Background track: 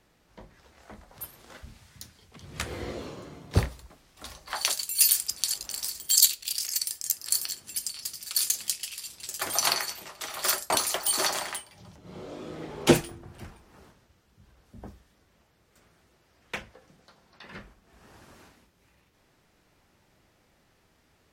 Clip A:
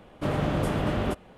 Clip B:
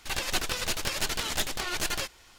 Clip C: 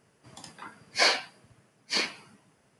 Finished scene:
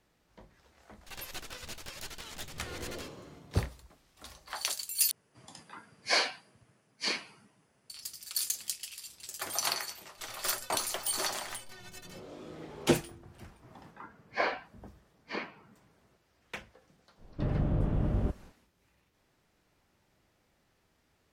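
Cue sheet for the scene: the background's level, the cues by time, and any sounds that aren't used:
background track -6.5 dB
1.01 add B -14 dB
5.11 replace with C -4.5 dB
10.12 add B -9 dB + metallic resonator 110 Hz, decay 0.32 s, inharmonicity 0.03
13.38 add C -2.5 dB + LPF 1600 Hz
17.17 add A -13.5 dB, fades 0.05 s + tilt -4 dB/oct

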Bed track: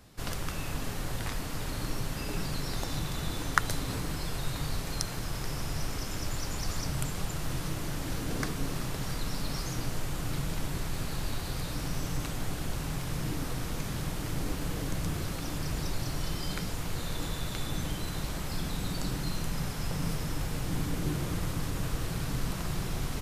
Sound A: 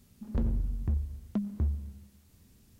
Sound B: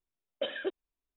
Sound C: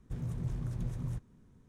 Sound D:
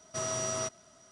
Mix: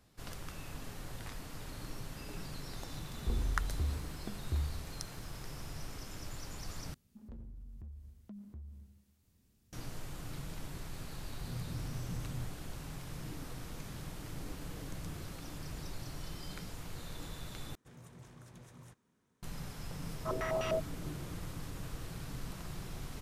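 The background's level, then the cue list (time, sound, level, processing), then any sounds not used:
bed track -10.5 dB
2.92 add A -7.5 dB + comb 2.6 ms
6.94 replace with A -11 dB + limiter -32.5 dBFS
11.3 add C -5.5 dB
17.75 replace with C -2 dB + HPF 880 Hz 6 dB/oct
20.11 add D -3 dB + stepped low-pass 10 Hz 320–2700 Hz
not used: B

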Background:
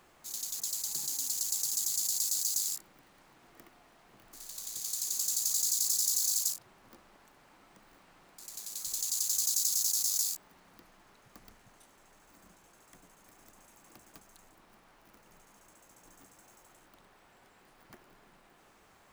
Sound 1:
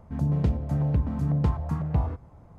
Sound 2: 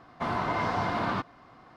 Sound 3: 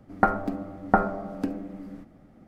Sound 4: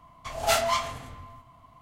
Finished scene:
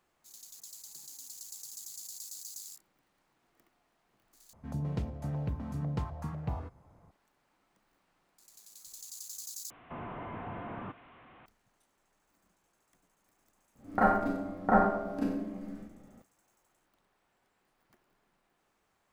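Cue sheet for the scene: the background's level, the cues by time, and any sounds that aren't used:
background -13.5 dB
4.53 replace with 1 -6 dB + tilt +1.5 dB/oct
9.7 replace with 2 -9.5 dB + delta modulation 16 kbps, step -41 dBFS
13.75 add 3 -12 dB + Schroeder reverb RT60 0.62 s, combs from 29 ms, DRR -9.5 dB
not used: 4

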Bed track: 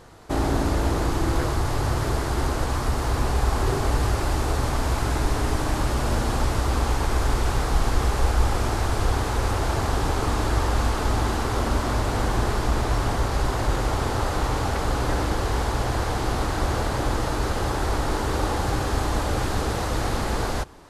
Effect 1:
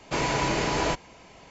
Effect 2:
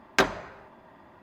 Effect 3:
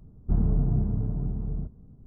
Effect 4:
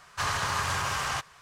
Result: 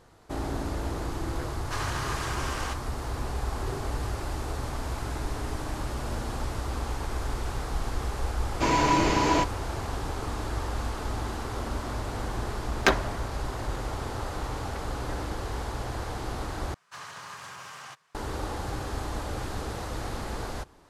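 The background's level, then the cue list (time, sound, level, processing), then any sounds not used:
bed track -9 dB
1.53 add 4 -5 dB + CVSD 64 kbps
8.49 add 1 -0.5 dB + small resonant body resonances 300/990 Hz, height 8 dB
12.68 add 2
16.74 replace with 4 -13 dB + HPF 130 Hz 24 dB/oct
not used: 3

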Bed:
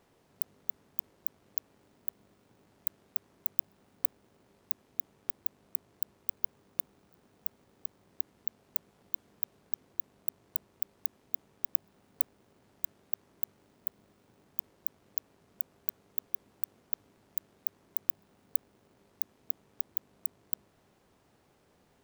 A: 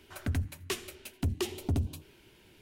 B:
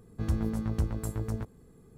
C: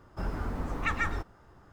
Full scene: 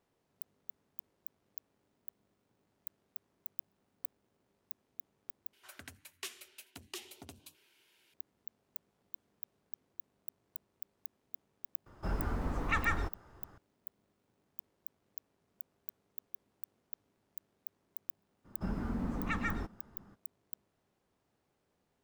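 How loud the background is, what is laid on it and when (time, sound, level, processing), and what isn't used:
bed -12 dB
5.53 replace with A -5.5 dB + HPF 1500 Hz 6 dB/oct
11.86 add C -1.5 dB
18.44 add C -6.5 dB, fades 0.02 s + bell 210 Hz +13.5 dB 0.79 oct
not used: B

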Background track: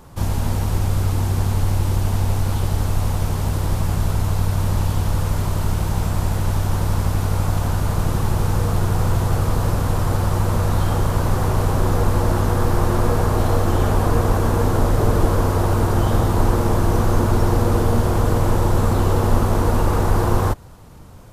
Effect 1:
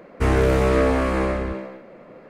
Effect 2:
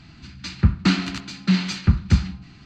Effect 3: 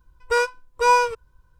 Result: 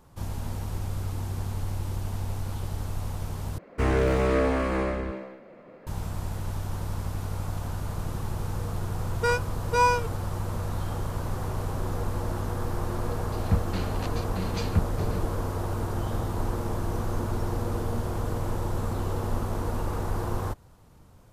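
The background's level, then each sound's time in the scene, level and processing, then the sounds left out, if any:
background track -12 dB
3.58 replace with 1 -5 dB + median filter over 3 samples
8.92 add 3 -5 dB
12.88 add 2 -8 dB + chopper 1.8 Hz, depth 65%, duty 45%

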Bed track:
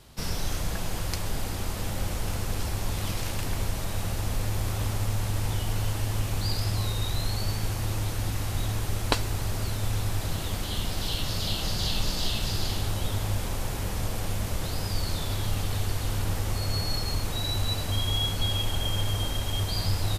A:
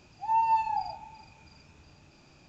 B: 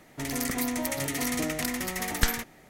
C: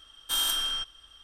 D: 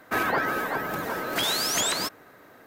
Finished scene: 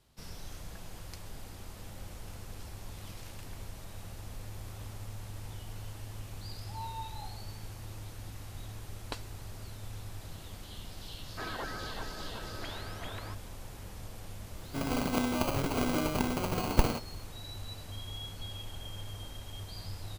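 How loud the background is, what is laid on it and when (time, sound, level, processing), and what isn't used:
bed track -15 dB
6.46 add A -17.5 dB
11.26 add D -14 dB + Gaussian blur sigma 2.5 samples
14.56 add B -1 dB + sample-rate reducer 1800 Hz
not used: C

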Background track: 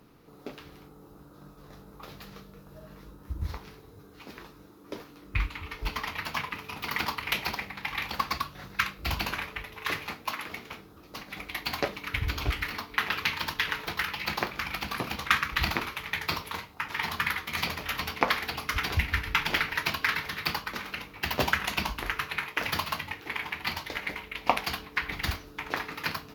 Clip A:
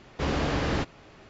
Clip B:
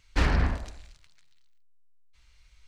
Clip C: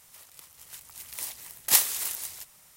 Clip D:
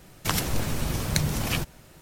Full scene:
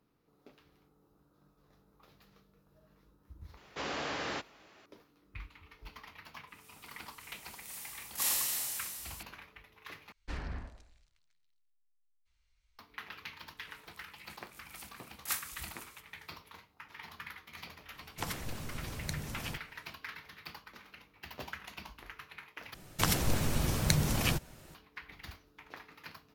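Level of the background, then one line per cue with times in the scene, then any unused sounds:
background track -17.5 dB
3.57 add A -4 dB + HPF 830 Hz 6 dB/oct
6.47 add C -16 dB + Schroeder reverb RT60 2.3 s, combs from 26 ms, DRR -8 dB
10.12 replace with B -16.5 dB
13.57 add C -16 dB
17.93 add D -14 dB
22.74 replace with D -3 dB

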